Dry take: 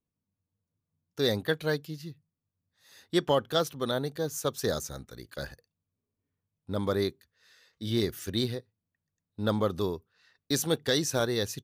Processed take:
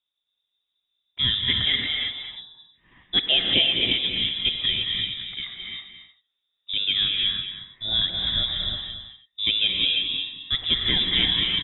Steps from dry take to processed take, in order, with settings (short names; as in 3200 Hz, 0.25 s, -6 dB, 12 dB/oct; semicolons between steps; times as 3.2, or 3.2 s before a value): inverted band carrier 3700 Hz; tapped delay 0.225/0.316 s -10/-18 dB; non-linear reverb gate 0.37 s rising, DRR 0 dB; gain +3.5 dB